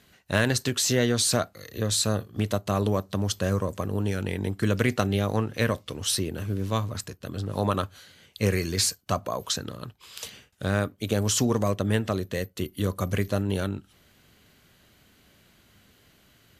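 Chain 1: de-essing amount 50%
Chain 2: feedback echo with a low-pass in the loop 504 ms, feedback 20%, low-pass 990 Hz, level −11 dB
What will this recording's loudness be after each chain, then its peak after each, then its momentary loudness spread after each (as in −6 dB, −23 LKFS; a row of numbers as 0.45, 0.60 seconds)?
−28.0, −27.0 LKFS; −7.0, −7.0 dBFS; 10, 12 LU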